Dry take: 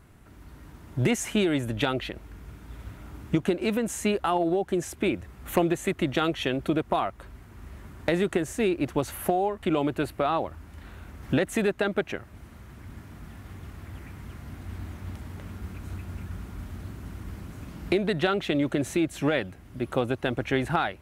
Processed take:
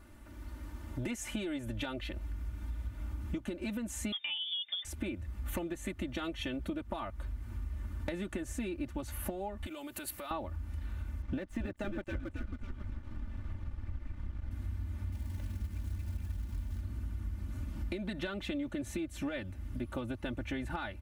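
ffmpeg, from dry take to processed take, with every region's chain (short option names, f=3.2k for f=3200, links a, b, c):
-filter_complex "[0:a]asettb=1/sr,asplit=3[a][b][c];[a]atrim=end=4.124[d];[b]atrim=start=4.12:end=4.85,asetpts=PTS-STARTPTS,afade=t=in:d=0.004:c=qsin,afade=t=out:st=0.726:d=0.004:c=qsin,lowpass=f=3.1k:t=q:w=0.5098,lowpass=f=3.1k:t=q:w=0.6013,lowpass=f=3.1k:t=q:w=0.9,lowpass=f=3.1k:t=q:w=2.563,afreqshift=-3700,highpass=f=87:w=0.5412,highpass=f=87:w=1.3066,equalizer=f=950:w=5.6:g=-3.5[e];[c]atrim=start=4.846[f];[d][e]acrossfade=d=0.004:c1=hsin:c2=qsin[g];[g][f]acrossfade=d=0.004:c1=qsin:c2=hsin,asettb=1/sr,asplit=3[h][i][j];[h]atrim=end=9.664[k];[i]atrim=start=9.66:end=10.31,asetpts=PTS-STARTPTS,afade=t=in:d=0.004:c=qsin,afade=t=out:st=0.646:d=0.004:c=qsin,acompressor=threshold=-37dB:ratio=5:attack=3.2:release=140:knee=1:detection=peak,aemphasis=mode=production:type=riaa[l];[j]atrim=start=10.306[m];[k][l]acrossfade=d=0.004:c1=hsin:c2=qsin[n];[n][m]acrossfade=d=0.004:c1=qsin:c2=hsin,asettb=1/sr,asplit=3[o][p][q];[o]atrim=end=11.224[r];[p]atrim=start=11.22:end=14.51,asetpts=PTS-STARTPTS,afade=t=in:d=0.004:c=qsin,afade=t=out:st=3.286:d=0.004:c=qsin,aemphasis=mode=reproduction:type=75fm,asplit=7[s][t][u][v][w][x][y];[t]adelay=273,afreqshift=-72,volume=-6dB[z];[u]adelay=546,afreqshift=-144,volume=-12.6dB[aa];[v]adelay=819,afreqshift=-216,volume=-19.1dB[ab];[w]adelay=1092,afreqshift=-288,volume=-25.7dB[ac];[x]adelay=1365,afreqshift=-360,volume=-32.2dB[ad];[y]adelay=1638,afreqshift=-432,volume=-38.8dB[ae];[s][z][aa][ab][ac][ad][ae]amix=inputs=7:normalize=0,atrim=end_sample=145089,aeval=exprs='sgn(val(0))*max(abs(val(0))-0.00501,0)':c=same[af];[q]atrim=start=14.506[ag];[r][af]acrossfade=d=0.004:c1=hsin:c2=qsin[ah];[ah][ag]acrossfade=d=0.004:c1=qsin:c2=hsin,asettb=1/sr,asplit=3[ai][aj][ak];[ai]atrim=end=15.124[al];[aj]atrim=start=15.12:end=16.81,asetpts=PTS-STARTPTS,afade=t=in:d=0.004:c=qsin,afade=t=out:st=1.686:d=0.004:c=qsin,bandreject=f=1.3k:w=5.6,acrusher=bits=3:mode=log:mix=0:aa=0.000001[am];[ak]atrim=start=16.806[an];[al][am]acrossfade=d=0.004:c1=hsin:c2=qsin[ao];[ao][an]acrossfade=d=0.004:c1=qsin:c2=hsin,aecho=1:1:3.4:0.91,asubboost=boost=4:cutoff=180,acompressor=threshold=-32dB:ratio=5,volume=-3.5dB"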